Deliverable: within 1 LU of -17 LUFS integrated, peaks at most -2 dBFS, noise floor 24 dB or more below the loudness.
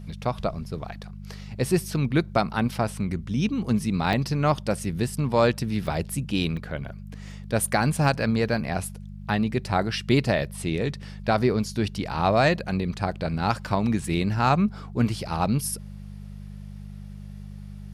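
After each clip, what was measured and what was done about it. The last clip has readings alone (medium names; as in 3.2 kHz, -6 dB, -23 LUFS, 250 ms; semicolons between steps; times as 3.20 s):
dropouts 3; longest dropout 1.8 ms; hum 50 Hz; highest harmonic 200 Hz; hum level -37 dBFS; loudness -25.5 LUFS; peak level -8.5 dBFS; loudness target -17.0 LUFS
-> interpolate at 4.13/5.87/6.57 s, 1.8 ms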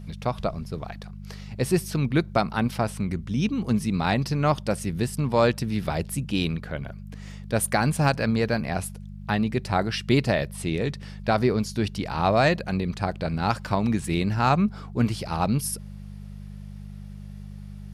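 dropouts 0; hum 50 Hz; highest harmonic 200 Hz; hum level -37 dBFS
-> de-hum 50 Hz, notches 4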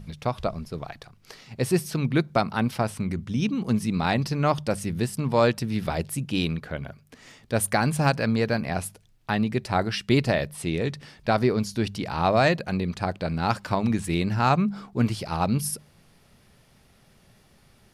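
hum not found; loudness -25.5 LUFS; peak level -8.0 dBFS; loudness target -17.0 LUFS
-> trim +8.5 dB; peak limiter -2 dBFS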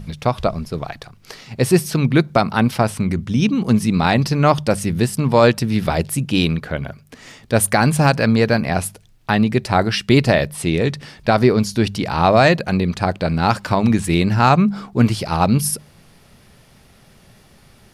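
loudness -17.5 LUFS; peak level -2.0 dBFS; noise floor -50 dBFS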